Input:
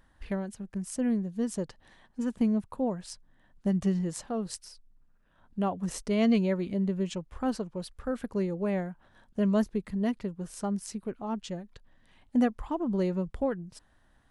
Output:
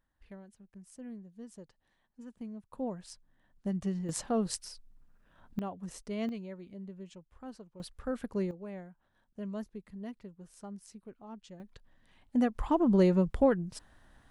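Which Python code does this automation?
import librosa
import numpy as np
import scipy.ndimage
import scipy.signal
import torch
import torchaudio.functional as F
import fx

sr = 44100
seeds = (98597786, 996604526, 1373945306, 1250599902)

y = fx.gain(x, sr, db=fx.steps((0.0, -17.0), (2.73, -6.5), (4.09, 2.5), (5.59, -9.5), (6.29, -16.0), (7.8, -3.0), (8.51, -13.5), (11.6, -3.0), (12.55, 4.5)))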